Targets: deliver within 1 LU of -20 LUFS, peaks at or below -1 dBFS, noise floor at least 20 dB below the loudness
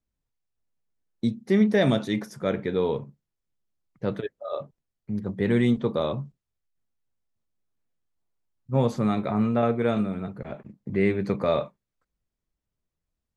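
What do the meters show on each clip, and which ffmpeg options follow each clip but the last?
loudness -26.0 LUFS; peak -9.0 dBFS; loudness target -20.0 LUFS
-> -af "volume=6dB"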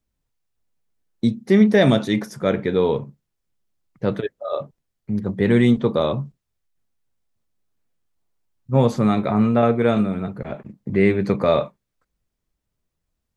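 loudness -20.0 LUFS; peak -3.0 dBFS; noise floor -79 dBFS

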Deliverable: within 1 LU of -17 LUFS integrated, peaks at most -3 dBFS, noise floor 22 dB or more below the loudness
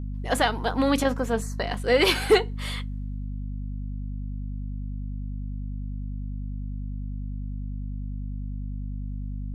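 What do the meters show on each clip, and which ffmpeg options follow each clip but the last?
hum 50 Hz; harmonics up to 250 Hz; hum level -29 dBFS; loudness -28.5 LUFS; peak -7.5 dBFS; loudness target -17.0 LUFS
-> -af "bandreject=f=50:t=h:w=4,bandreject=f=100:t=h:w=4,bandreject=f=150:t=h:w=4,bandreject=f=200:t=h:w=4,bandreject=f=250:t=h:w=4"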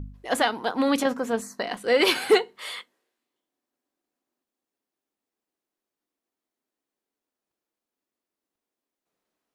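hum none; loudness -24.0 LUFS; peak -8.0 dBFS; loudness target -17.0 LUFS
-> -af "volume=7dB,alimiter=limit=-3dB:level=0:latency=1"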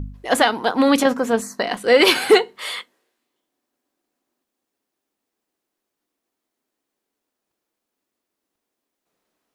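loudness -17.5 LUFS; peak -3.0 dBFS; noise floor -82 dBFS

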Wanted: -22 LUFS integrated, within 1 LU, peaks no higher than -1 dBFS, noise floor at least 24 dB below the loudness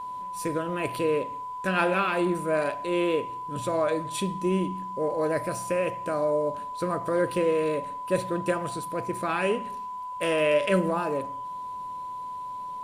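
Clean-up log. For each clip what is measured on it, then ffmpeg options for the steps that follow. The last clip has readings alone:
steady tone 1000 Hz; tone level -33 dBFS; loudness -28.0 LUFS; peak -11.0 dBFS; loudness target -22.0 LUFS
-> -af "bandreject=f=1k:w=30"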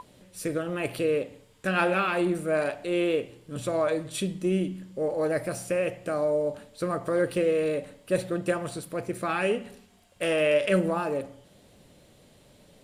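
steady tone none; loudness -28.0 LUFS; peak -11.0 dBFS; loudness target -22.0 LUFS
-> -af "volume=6dB"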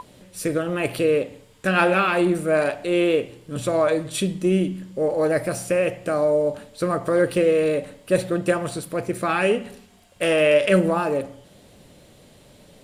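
loudness -22.0 LUFS; peak -5.0 dBFS; noise floor -52 dBFS

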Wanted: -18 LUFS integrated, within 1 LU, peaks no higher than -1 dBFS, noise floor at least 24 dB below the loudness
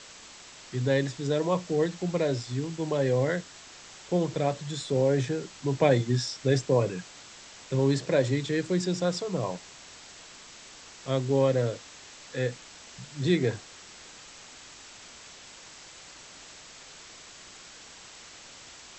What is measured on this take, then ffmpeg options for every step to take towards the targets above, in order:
noise floor -49 dBFS; noise floor target -52 dBFS; loudness -28.0 LUFS; peak -10.0 dBFS; loudness target -18.0 LUFS
-> -af "afftdn=nr=6:nf=-49"
-af "volume=10dB,alimiter=limit=-1dB:level=0:latency=1"

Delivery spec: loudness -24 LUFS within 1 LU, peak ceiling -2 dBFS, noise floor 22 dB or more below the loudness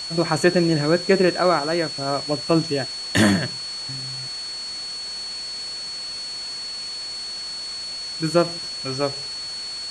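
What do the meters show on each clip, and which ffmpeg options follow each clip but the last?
steady tone 4400 Hz; tone level -29 dBFS; noise floor -32 dBFS; noise floor target -46 dBFS; loudness -23.5 LUFS; peak -4.0 dBFS; loudness target -24.0 LUFS
-> -af "bandreject=f=4.4k:w=30"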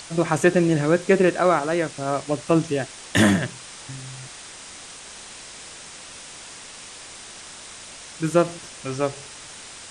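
steady tone none; noise floor -41 dBFS; noise floor target -44 dBFS
-> -af "afftdn=nr=6:nf=-41"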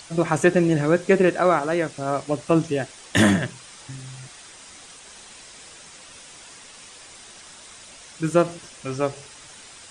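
noise floor -45 dBFS; loudness -21.5 LUFS; peak -4.0 dBFS; loudness target -24.0 LUFS
-> -af "volume=-2.5dB"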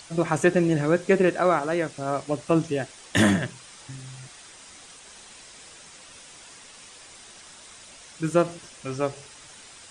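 loudness -24.0 LUFS; peak -6.5 dBFS; noise floor -48 dBFS

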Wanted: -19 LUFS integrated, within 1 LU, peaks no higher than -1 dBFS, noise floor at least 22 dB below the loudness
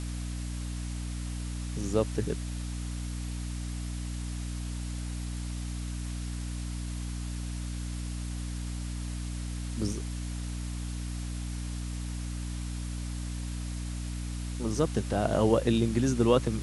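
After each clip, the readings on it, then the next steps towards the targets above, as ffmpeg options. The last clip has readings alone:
hum 60 Hz; harmonics up to 300 Hz; hum level -33 dBFS; noise floor -35 dBFS; noise floor target -56 dBFS; loudness -33.5 LUFS; peak -9.5 dBFS; loudness target -19.0 LUFS
-> -af "bandreject=f=60:t=h:w=4,bandreject=f=120:t=h:w=4,bandreject=f=180:t=h:w=4,bandreject=f=240:t=h:w=4,bandreject=f=300:t=h:w=4"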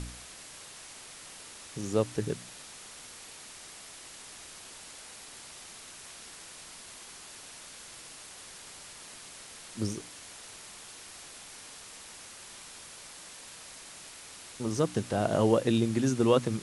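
hum none; noise floor -48 dBFS; noise floor target -58 dBFS
-> -af "afftdn=nr=10:nf=-48"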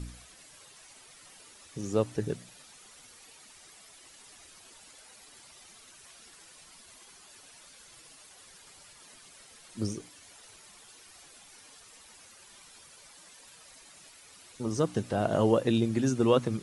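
noise floor -55 dBFS; loudness -29.5 LUFS; peak -10.0 dBFS; loudness target -19.0 LUFS
-> -af "volume=10.5dB,alimiter=limit=-1dB:level=0:latency=1"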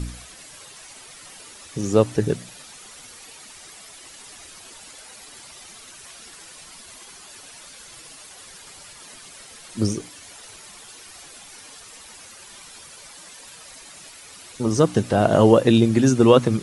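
loudness -19.0 LUFS; peak -1.0 dBFS; noise floor -44 dBFS

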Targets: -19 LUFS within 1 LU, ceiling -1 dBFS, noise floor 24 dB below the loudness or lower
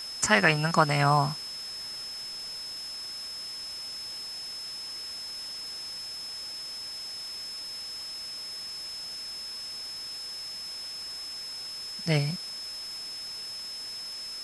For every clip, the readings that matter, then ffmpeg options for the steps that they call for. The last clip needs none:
steady tone 5200 Hz; tone level -36 dBFS; noise floor -39 dBFS; noise floor target -55 dBFS; loudness -31.0 LUFS; peak -5.0 dBFS; loudness target -19.0 LUFS
-> -af "bandreject=f=5.2k:w=30"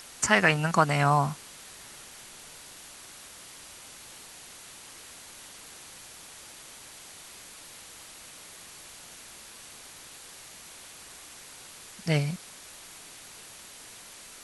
steady tone none; noise floor -48 dBFS; noise floor target -49 dBFS
-> -af "afftdn=nr=6:nf=-48"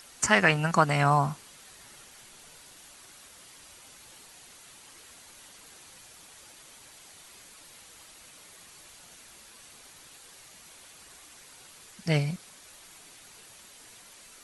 noise floor -52 dBFS; loudness -25.0 LUFS; peak -5.5 dBFS; loudness target -19.0 LUFS
-> -af "volume=6dB,alimiter=limit=-1dB:level=0:latency=1"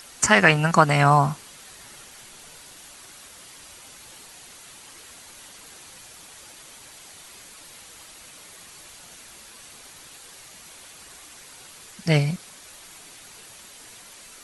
loudness -19.0 LUFS; peak -1.0 dBFS; noise floor -46 dBFS

